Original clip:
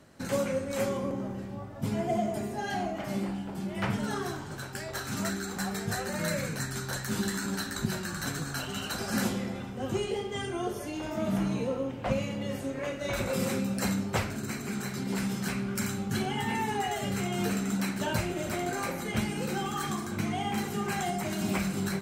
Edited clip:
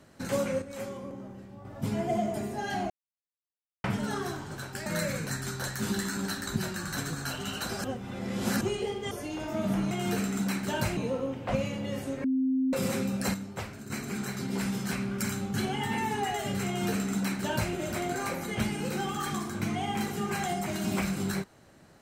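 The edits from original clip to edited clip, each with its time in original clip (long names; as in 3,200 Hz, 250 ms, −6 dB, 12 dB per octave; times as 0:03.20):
0:00.62–0:01.65: clip gain −8 dB
0:02.90–0:03.84: silence
0:04.86–0:06.15: remove
0:09.13–0:09.90: reverse
0:10.40–0:10.74: remove
0:12.81–0:13.30: beep over 262 Hz −23.5 dBFS
0:13.91–0:14.47: clip gain −8 dB
0:17.24–0:18.30: duplicate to 0:11.54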